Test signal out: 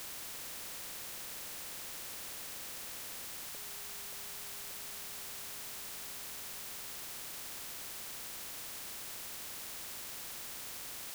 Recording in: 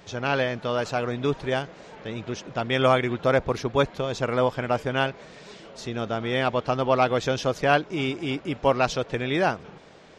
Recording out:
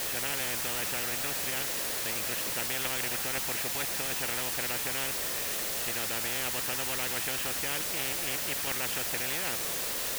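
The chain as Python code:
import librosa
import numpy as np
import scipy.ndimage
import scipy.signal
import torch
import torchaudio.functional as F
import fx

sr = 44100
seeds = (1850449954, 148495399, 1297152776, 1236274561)

p1 = fx.vowel_filter(x, sr, vowel='e')
p2 = fx.band_shelf(p1, sr, hz=4600.0, db=-12.0, octaves=1.0)
p3 = fx.level_steps(p2, sr, step_db=22)
p4 = p2 + F.gain(torch.from_numpy(p3), 0.0).numpy()
p5 = fx.quant_dither(p4, sr, seeds[0], bits=8, dither='triangular')
p6 = fx.spectral_comp(p5, sr, ratio=10.0)
y = F.gain(torch.from_numpy(p6), -7.5).numpy()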